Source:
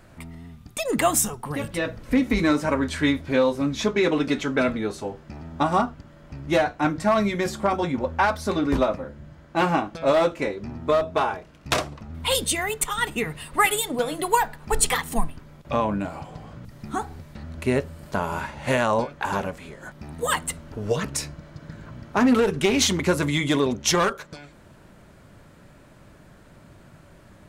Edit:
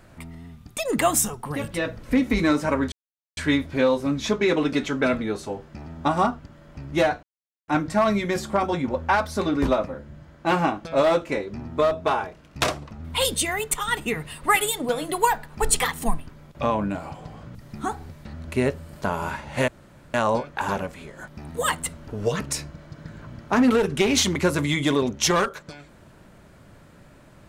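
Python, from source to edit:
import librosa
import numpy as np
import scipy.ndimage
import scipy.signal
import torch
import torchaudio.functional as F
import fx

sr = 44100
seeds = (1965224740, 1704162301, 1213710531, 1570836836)

y = fx.edit(x, sr, fx.insert_silence(at_s=2.92, length_s=0.45),
    fx.insert_silence(at_s=6.78, length_s=0.45),
    fx.insert_room_tone(at_s=18.78, length_s=0.46), tone=tone)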